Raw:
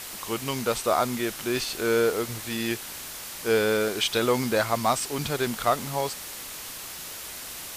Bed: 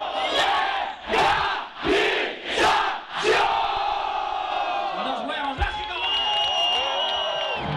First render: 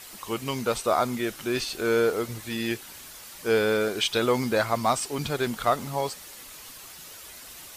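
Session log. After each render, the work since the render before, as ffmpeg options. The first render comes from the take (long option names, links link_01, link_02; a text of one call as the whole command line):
ffmpeg -i in.wav -af "afftdn=noise_reduction=8:noise_floor=-39" out.wav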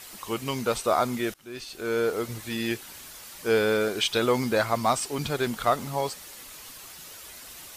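ffmpeg -i in.wav -filter_complex "[0:a]asplit=2[link_01][link_02];[link_01]atrim=end=1.34,asetpts=PTS-STARTPTS,afade=type=out:start_time=1.336:duration=0.004:curve=hsin:silence=0.0794328[link_03];[link_02]atrim=start=1.34,asetpts=PTS-STARTPTS,afade=type=in:duration=0.99:silence=0.0794328[link_04];[link_03][link_04]concat=n=2:v=0:a=1" out.wav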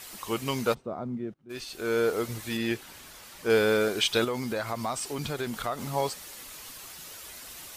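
ffmpeg -i in.wav -filter_complex "[0:a]asplit=3[link_01][link_02][link_03];[link_01]afade=type=out:start_time=0.73:duration=0.02[link_04];[link_02]bandpass=frequency=170:width_type=q:width=1.2,afade=type=in:start_time=0.73:duration=0.02,afade=type=out:start_time=1.49:duration=0.02[link_05];[link_03]afade=type=in:start_time=1.49:duration=0.02[link_06];[link_04][link_05][link_06]amix=inputs=3:normalize=0,asettb=1/sr,asplit=3[link_07][link_08][link_09];[link_07]atrim=end=2.574[link_10];[link_08]atrim=start=2.57:end=3.5,asetpts=PTS-STARTPTS,afade=type=in:duration=0.004:curve=qsin,afade=type=out:start_time=0.926:duration=0.004:curve=qsin,highshelf=frequency=4700:gain=-7[link_11];[link_09]atrim=start=3.496[link_12];[link_10][link_11]acrossfade=duration=0.004:curve1=hsin:curve2=qsin[link_13];[link_13][link_12]acrossfade=duration=0.004:curve1=qsin:curve2=hsin,asettb=1/sr,asplit=3[link_14][link_15][link_16];[link_14]atrim=end=4.244[link_17];[link_15]atrim=start=4.24:end=5.83,asetpts=PTS-STARTPTS,afade=type=in:duration=0.004:curve=qsin,afade=type=out:start_time=1.586:duration=0.004:curve=qsin,acompressor=threshold=-30dB:ratio=2.5:attack=3.2:release=140:knee=1:detection=peak[link_18];[link_16]atrim=start=5.826[link_19];[link_17][link_18]acrossfade=duration=0.004:curve1=hsin:curve2=qsin[link_20];[link_20][link_19]acrossfade=duration=0.004:curve1=qsin:curve2=hsin" out.wav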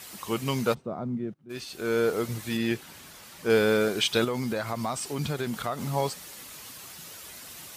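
ffmpeg -i in.wav -af "highpass=55,equalizer=frequency=160:width_type=o:width=1.1:gain=6" out.wav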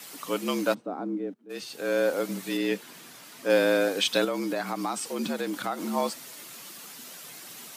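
ffmpeg -i in.wav -af "afreqshift=81" out.wav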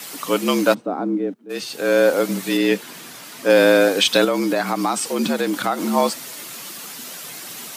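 ffmpeg -i in.wav -af "volume=9.5dB,alimiter=limit=-3dB:level=0:latency=1" out.wav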